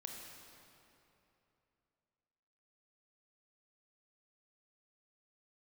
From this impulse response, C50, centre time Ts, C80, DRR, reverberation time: 1.5 dB, 0.105 s, 2.5 dB, 0.5 dB, 3.0 s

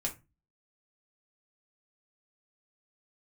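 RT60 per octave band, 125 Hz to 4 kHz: 0.45, 0.40, 0.25, 0.25, 0.25, 0.15 s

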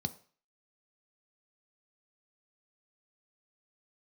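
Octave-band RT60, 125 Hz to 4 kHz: 0.35, 0.35, 0.40, 0.45, 0.45, 0.45 s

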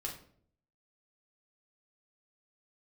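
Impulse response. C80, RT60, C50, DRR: 12.0 dB, 0.60 s, 8.0 dB, -2.0 dB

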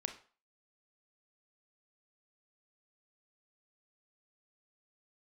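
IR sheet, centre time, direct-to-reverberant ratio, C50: 12 ms, 6.0 dB, 11.0 dB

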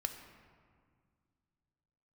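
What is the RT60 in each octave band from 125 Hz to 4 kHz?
2.9, 2.7, 2.0, 1.9, 1.6, 1.1 s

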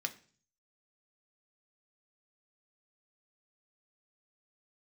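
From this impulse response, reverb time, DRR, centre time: 0.45 s, 5.0 dB, 5 ms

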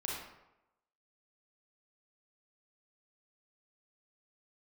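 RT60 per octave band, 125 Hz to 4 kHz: 0.85, 0.85, 0.90, 0.90, 0.75, 0.55 s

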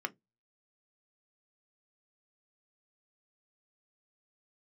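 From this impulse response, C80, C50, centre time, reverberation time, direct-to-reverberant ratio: 39.0 dB, 28.0 dB, 3 ms, 0.15 s, 7.0 dB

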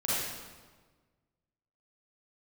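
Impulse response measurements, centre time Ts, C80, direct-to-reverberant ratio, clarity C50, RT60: 0.11 s, -0.5 dB, -9.5 dB, -5.5 dB, 1.4 s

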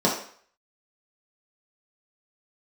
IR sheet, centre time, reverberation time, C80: 32 ms, 0.55 s, 9.5 dB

